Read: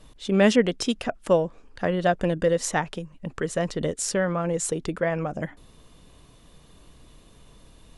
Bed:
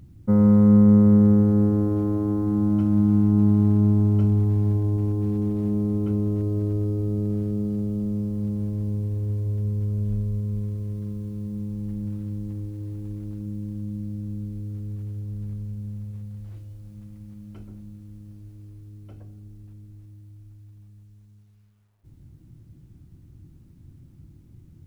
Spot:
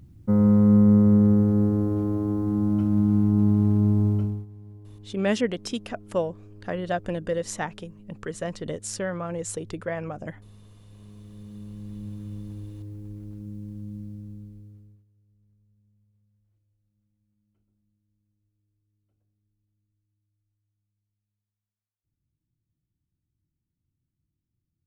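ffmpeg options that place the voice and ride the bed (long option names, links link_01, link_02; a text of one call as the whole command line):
ffmpeg -i stem1.wav -i stem2.wav -filter_complex "[0:a]adelay=4850,volume=-5.5dB[link_01];[1:a]volume=15.5dB,afade=type=out:start_time=4.08:duration=0.38:silence=0.0891251,afade=type=in:start_time=10.79:duration=1.46:silence=0.133352,afade=type=out:start_time=13.97:duration=1.08:silence=0.0446684[link_02];[link_01][link_02]amix=inputs=2:normalize=0" out.wav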